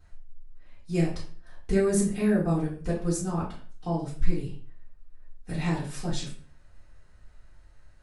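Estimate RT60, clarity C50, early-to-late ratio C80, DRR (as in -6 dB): 0.40 s, 6.5 dB, 11.5 dB, -8.0 dB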